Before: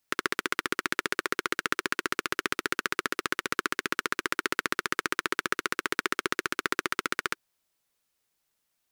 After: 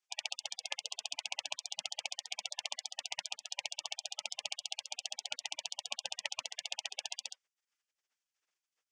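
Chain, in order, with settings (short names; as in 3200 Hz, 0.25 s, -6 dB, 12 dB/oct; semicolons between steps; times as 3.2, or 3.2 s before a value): tilt -2.5 dB/oct; in parallel at +0.5 dB: level quantiser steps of 15 dB; on the sum: spectral gate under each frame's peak -20 dB weak; speaker cabinet 370–7100 Hz, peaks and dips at 690 Hz -4 dB, 1000 Hz -3 dB, 4000 Hz -8 dB; gain +2.5 dB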